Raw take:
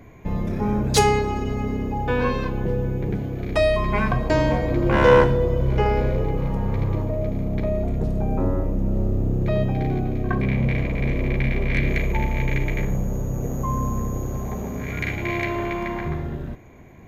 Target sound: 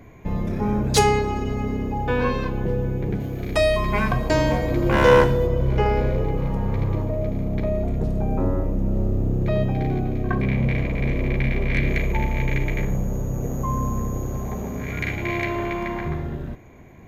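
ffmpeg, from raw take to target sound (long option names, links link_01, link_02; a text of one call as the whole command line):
ffmpeg -i in.wav -filter_complex "[0:a]asettb=1/sr,asplit=3[link_01][link_02][link_03];[link_01]atrim=end=3.204[link_04];[link_02]atrim=start=3.2:end=5.47,asetpts=PTS-STARTPTS,afade=type=in:duration=0.004:curve=qsin,afade=type=out:start_time=2.266:duration=0.004:curve=qsin,aemphasis=mode=production:type=cd[link_05];[link_03]atrim=start=5.466[link_06];[link_04][link_05]acrossfade=duration=0.004:curve1=hsin:curve2=qsin[link_07];[link_07][link_06]acrossfade=duration=0.004:curve1=qsin:curve2=hsin" out.wav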